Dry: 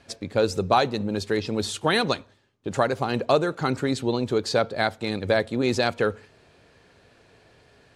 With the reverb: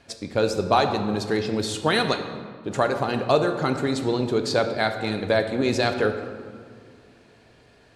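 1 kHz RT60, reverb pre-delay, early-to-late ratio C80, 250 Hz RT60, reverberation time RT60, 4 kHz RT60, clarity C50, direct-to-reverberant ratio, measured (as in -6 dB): 1.9 s, 3 ms, 9.5 dB, 2.7 s, 2.0 s, 1.1 s, 8.0 dB, 6.0 dB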